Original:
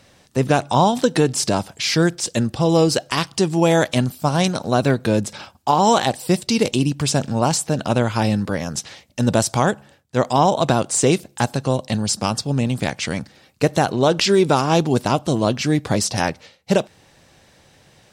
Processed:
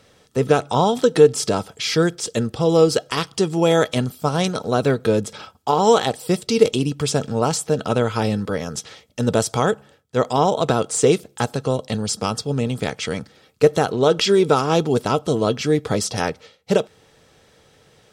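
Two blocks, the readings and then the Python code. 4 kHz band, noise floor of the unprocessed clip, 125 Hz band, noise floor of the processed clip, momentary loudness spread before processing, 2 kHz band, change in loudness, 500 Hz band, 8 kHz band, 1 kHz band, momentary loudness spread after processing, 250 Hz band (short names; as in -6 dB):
-1.5 dB, -54 dBFS, -3.0 dB, -55 dBFS, 7 LU, -2.5 dB, -0.5 dB, +2.0 dB, -3.0 dB, -2.5 dB, 9 LU, -2.5 dB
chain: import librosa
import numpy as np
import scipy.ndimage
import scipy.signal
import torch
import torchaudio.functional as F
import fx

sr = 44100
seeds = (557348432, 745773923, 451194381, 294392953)

y = fx.small_body(x, sr, hz=(450.0, 1300.0, 3300.0), ring_ms=60, db=12)
y = F.gain(torch.from_numpy(y), -3.0).numpy()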